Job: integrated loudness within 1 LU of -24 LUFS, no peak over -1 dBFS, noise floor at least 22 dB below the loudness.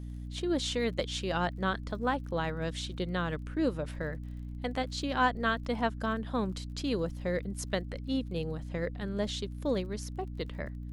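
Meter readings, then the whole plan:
tick rate 35 per s; hum 60 Hz; highest harmonic 300 Hz; hum level -38 dBFS; loudness -33.5 LUFS; peak level -15.0 dBFS; loudness target -24.0 LUFS
-> de-click; hum notches 60/120/180/240/300 Hz; trim +9.5 dB

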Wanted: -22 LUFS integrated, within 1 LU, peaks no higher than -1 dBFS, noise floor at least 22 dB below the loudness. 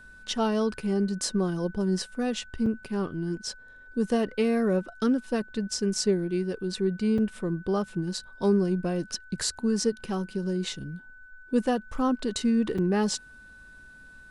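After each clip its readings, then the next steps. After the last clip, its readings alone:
dropouts 3; longest dropout 4.7 ms; steady tone 1.5 kHz; tone level -48 dBFS; loudness -28.0 LUFS; peak level -12.5 dBFS; loudness target -22.0 LUFS
-> interpolate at 2.66/7.18/12.78 s, 4.7 ms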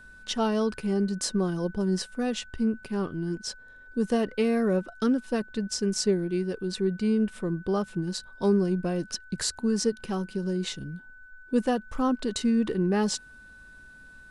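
dropouts 0; steady tone 1.5 kHz; tone level -48 dBFS
-> band-stop 1.5 kHz, Q 30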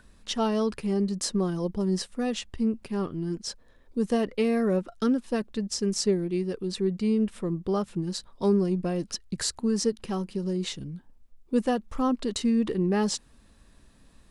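steady tone not found; loudness -28.0 LUFS; peak level -12.5 dBFS; loudness target -22.0 LUFS
-> trim +6 dB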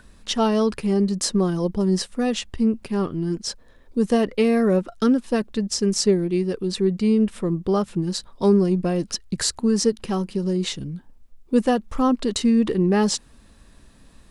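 loudness -22.0 LUFS; peak level -6.5 dBFS; noise floor -51 dBFS

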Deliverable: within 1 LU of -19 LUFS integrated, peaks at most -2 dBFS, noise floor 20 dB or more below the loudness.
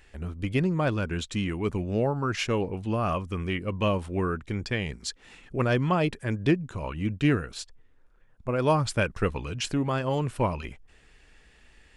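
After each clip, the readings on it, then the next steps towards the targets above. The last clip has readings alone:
loudness -28.0 LUFS; peak level -11.5 dBFS; loudness target -19.0 LUFS
-> trim +9 dB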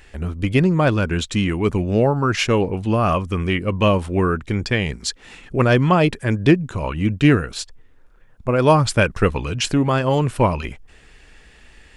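loudness -19.0 LUFS; peak level -2.5 dBFS; noise floor -49 dBFS

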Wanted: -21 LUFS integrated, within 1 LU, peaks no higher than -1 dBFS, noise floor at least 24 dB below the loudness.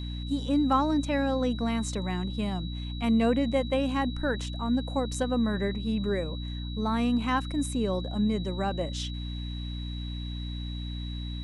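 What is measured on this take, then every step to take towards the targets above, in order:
hum 60 Hz; highest harmonic 300 Hz; hum level -32 dBFS; steady tone 3.9 kHz; tone level -43 dBFS; loudness -29.5 LUFS; peak level -13.0 dBFS; loudness target -21.0 LUFS
-> de-hum 60 Hz, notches 5; band-stop 3.9 kHz, Q 30; trim +8.5 dB

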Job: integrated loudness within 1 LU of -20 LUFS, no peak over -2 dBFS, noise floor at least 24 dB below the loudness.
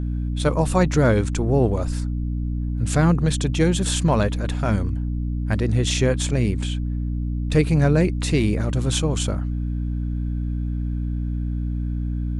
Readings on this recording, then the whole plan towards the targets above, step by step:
hum 60 Hz; highest harmonic 300 Hz; hum level -22 dBFS; loudness -22.5 LUFS; peak level -6.0 dBFS; loudness target -20.0 LUFS
-> hum notches 60/120/180/240/300 Hz; trim +2.5 dB

